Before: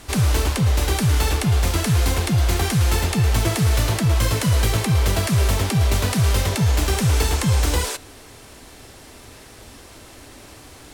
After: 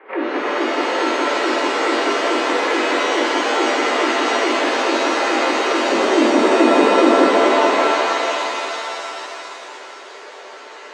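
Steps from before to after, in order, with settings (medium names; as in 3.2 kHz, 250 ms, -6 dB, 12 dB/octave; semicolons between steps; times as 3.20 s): 5.88–7.38 s: tilt EQ -3.5 dB/octave; mistuned SSB +140 Hz 190–2100 Hz; pitch-shifted reverb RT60 3.2 s, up +7 st, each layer -2 dB, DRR -4 dB; trim +1 dB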